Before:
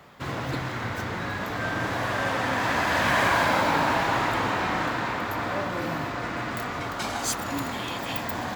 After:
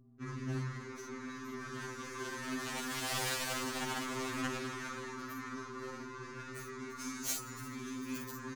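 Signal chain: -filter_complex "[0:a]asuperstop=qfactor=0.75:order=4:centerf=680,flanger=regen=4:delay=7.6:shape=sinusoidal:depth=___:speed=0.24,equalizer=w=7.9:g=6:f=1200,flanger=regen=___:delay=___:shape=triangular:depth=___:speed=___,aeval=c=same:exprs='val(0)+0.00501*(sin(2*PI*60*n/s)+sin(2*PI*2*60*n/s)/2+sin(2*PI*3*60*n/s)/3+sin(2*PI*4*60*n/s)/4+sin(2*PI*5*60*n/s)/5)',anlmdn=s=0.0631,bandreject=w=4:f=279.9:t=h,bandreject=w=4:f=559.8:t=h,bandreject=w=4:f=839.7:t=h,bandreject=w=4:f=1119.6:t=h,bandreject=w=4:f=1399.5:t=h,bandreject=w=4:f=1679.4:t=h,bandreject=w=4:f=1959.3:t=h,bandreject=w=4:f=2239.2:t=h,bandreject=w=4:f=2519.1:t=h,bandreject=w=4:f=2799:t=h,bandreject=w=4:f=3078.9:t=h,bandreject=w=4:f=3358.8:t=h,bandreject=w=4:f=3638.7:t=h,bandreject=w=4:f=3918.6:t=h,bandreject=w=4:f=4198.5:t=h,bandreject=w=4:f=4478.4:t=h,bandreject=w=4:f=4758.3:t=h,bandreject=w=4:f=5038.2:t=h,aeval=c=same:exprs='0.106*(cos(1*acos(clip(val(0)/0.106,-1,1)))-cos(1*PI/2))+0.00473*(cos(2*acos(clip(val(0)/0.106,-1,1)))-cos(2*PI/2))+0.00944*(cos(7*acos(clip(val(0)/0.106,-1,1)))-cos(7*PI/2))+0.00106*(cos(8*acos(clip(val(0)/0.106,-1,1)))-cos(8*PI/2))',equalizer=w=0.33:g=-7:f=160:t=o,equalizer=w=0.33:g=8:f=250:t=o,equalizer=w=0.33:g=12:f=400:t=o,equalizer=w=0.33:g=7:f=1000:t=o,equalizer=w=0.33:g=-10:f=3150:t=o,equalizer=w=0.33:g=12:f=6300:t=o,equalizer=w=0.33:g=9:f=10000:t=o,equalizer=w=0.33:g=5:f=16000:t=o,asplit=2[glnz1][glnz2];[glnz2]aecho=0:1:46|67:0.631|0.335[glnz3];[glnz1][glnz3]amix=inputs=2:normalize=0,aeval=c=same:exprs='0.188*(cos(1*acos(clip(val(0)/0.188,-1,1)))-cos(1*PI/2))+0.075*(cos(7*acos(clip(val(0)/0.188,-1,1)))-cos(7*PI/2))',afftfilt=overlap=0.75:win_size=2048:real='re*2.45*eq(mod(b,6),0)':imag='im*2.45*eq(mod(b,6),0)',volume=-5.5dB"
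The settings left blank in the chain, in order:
6, -52, 3.2, 4.1, 1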